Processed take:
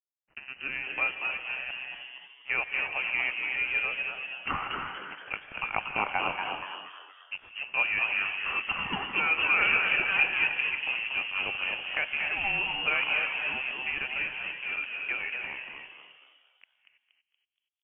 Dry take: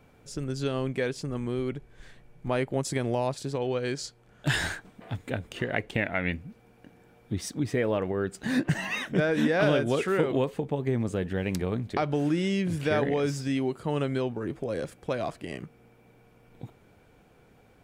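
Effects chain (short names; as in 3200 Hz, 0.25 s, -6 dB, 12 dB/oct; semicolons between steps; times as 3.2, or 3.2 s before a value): low shelf 330 Hz -12 dB; small resonant body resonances 200/490/1100/2100 Hz, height 8 dB; crossover distortion -38 dBFS; inverted band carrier 2900 Hz; frequency-shifting echo 0.236 s, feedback 43%, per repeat +130 Hz, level -5 dB; non-linear reverb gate 0.35 s rising, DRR 6.5 dB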